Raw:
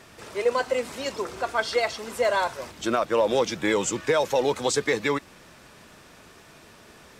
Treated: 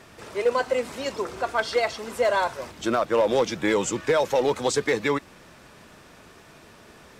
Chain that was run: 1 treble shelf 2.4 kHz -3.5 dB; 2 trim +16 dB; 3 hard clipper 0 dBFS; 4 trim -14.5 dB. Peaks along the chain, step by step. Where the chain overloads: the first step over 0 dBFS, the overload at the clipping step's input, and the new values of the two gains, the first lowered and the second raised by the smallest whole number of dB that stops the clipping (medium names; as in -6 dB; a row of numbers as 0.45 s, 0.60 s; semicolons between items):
-11.0 dBFS, +5.0 dBFS, 0.0 dBFS, -14.5 dBFS; step 2, 5.0 dB; step 2 +11 dB, step 4 -9.5 dB